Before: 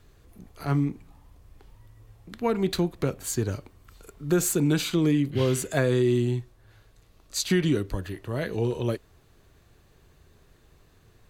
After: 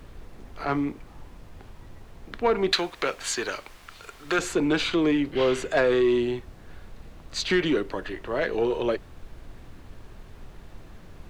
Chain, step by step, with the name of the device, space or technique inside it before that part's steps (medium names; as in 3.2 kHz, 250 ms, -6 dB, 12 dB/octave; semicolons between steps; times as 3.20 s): aircraft cabin announcement (band-pass 400–3300 Hz; saturation -21 dBFS, distortion -19 dB; brown noise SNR 14 dB); 2.72–4.39 s: tilt shelf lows -9 dB, about 790 Hz; trim +7.5 dB